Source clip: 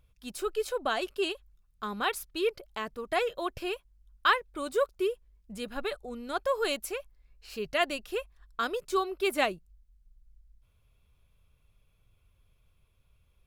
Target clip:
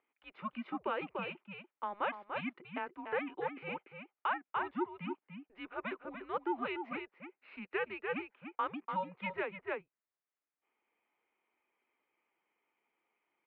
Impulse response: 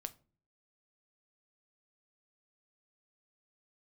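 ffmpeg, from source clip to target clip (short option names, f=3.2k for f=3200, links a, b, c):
-filter_complex "[0:a]asplit=2[a][b];[b]adelay=291.5,volume=-7dB,highshelf=f=4k:g=-6.56[c];[a][c]amix=inputs=2:normalize=0,alimiter=limit=-21dB:level=0:latency=1:release=288,highpass=f=570:t=q:w=0.5412,highpass=f=570:t=q:w=1.307,lowpass=f=2.7k:t=q:w=0.5176,lowpass=f=2.7k:t=q:w=0.7071,lowpass=f=2.7k:t=q:w=1.932,afreqshift=-200,volume=-1.5dB"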